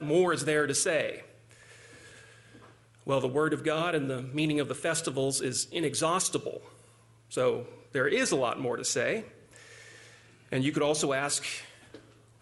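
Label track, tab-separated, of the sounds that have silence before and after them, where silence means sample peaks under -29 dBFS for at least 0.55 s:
3.080000	6.570000	sound
7.340000	9.190000	sound
10.530000	11.550000	sound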